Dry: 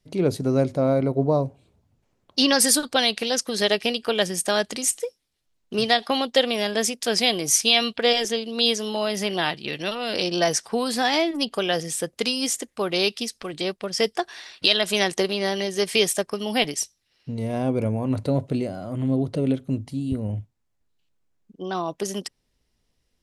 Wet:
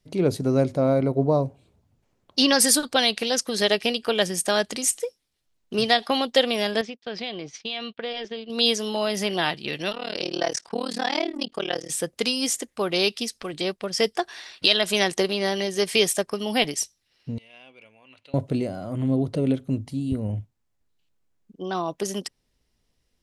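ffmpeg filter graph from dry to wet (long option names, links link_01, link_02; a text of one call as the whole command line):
ffmpeg -i in.wav -filter_complex "[0:a]asettb=1/sr,asplit=3[link_01][link_02][link_03];[link_01]atrim=end=6.814[link_04];[link_02]atrim=start=6.81:end=8.5,asetpts=PTS-STARTPTS,afade=type=in:duration=0.004:curve=qsin,afade=type=out:start_time=1.686:duration=0.004:curve=qsin,lowpass=frequency=4000:width=0.5412,lowpass=frequency=4000:width=1.3066,agate=range=-33dB:threshold=-28dB:ratio=3:release=100:detection=peak,acompressor=threshold=-32dB:ratio=2.5:attack=3.2:release=140:knee=1:detection=peak[link_05];[link_03]atrim=start=8.496[link_06];[link_04][link_05]acrossfade=duration=0.004:curve1=hsin:curve2=qsin[link_07];[link_07][link_06]acrossfade=duration=0.004:curve1=qsin:curve2=hsin,asettb=1/sr,asplit=3[link_08][link_09][link_10];[link_08]atrim=end=9.924[link_11];[link_09]atrim=start=9.92:end=11.9,asetpts=PTS-STARTPTS,afade=type=in:duration=0.004:curve=qsin,afade=type=out:start_time=1.976:duration=0.004:curve=qsin,lowpass=7500,equalizer=frequency=160:width_type=o:width=0.24:gain=-11.5,tremolo=f=38:d=1[link_12];[link_10]atrim=start=11.896[link_13];[link_11][link_12]acrossfade=duration=0.004:curve1=hsin:curve2=qsin[link_14];[link_14][link_13]acrossfade=duration=0.004:curve1=qsin:curve2=hsin,asettb=1/sr,asplit=3[link_15][link_16][link_17];[link_15]atrim=end=17.384[link_18];[link_16]atrim=start=17.38:end=18.34,asetpts=PTS-STARTPTS,afade=type=in:duration=0.004:curve=qsin,afade=type=out:start_time=0.956:duration=0.004:curve=qsin,bandpass=frequency=2800:width_type=q:width=4.5,acompressor=mode=upward:threshold=-55dB:ratio=2.5:attack=3.2:release=140:knee=2.83:detection=peak[link_19];[link_17]atrim=start=18.336[link_20];[link_18][link_19]acrossfade=duration=0.004:curve1=hsin:curve2=qsin[link_21];[link_21][link_20]acrossfade=duration=0.004:curve1=qsin:curve2=hsin" out.wav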